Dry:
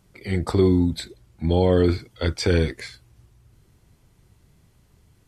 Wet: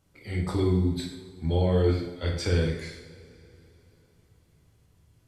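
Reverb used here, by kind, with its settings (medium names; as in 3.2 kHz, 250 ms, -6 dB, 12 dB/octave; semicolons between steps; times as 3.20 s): two-slope reverb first 0.7 s, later 3.5 s, from -20 dB, DRR -2 dB; trim -9.5 dB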